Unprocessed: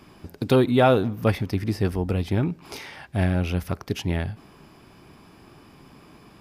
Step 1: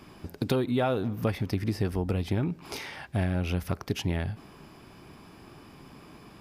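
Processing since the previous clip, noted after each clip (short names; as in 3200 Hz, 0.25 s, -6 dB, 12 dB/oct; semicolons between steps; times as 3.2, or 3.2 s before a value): compressor 5:1, threshold -24 dBFS, peak gain reduction 10 dB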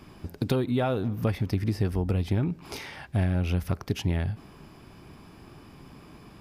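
low shelf 150 Hz +6.5 dB; gain -1 dB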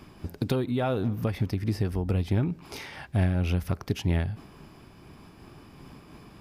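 noise-modulated level, depth 50%; gain +2.5 dB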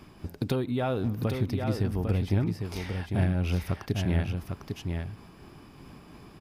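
echo 0.801 s -5.5 dB; gain -1.5 dB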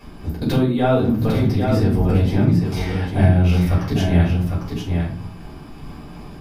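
shoebox room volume 250 m³, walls furnished, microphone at 5.4 m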